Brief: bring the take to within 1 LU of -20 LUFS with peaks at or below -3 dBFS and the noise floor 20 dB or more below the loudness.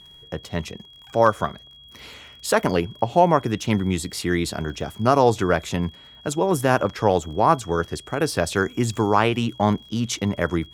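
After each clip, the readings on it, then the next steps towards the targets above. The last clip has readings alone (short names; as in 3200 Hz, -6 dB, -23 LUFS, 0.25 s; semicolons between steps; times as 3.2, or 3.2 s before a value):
ticks 40/s; steady tone 3300 Hz; tone level -45 dBFS; loudness -22.5 LUFS; peak -2.5 dBFS; loudness target -20.0 LUFS
-> de-click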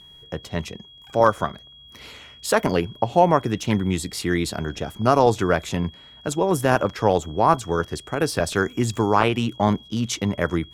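ticks 0.28/s; steady tone 3300 Hz; tone level -45 dBFS
-> notch 3300 Hz, Q 30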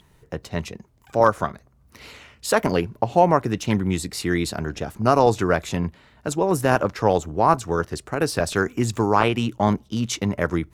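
steady tone none; loudness -22.5 LUFS; peak -2.5 dBFS; loudness target -20.0 LUFS
-> gain +2.5 dB; limiter -3 dBFS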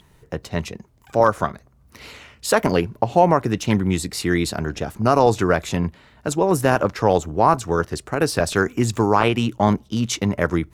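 loudness -20.5 LUFS; peak -3.0 dBFS; noise floor -55 dBFS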